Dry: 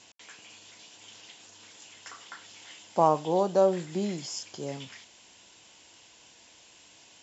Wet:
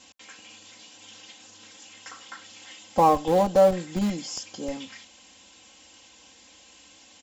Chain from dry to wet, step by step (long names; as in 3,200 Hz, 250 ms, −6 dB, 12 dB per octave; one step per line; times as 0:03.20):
parametric band 96 Hz +5 dB 2 octaves
comb filter 3.8 ms, depth 92%
in parallel at −4.5 dB: comparator with hysteresis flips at −22.5 dBFS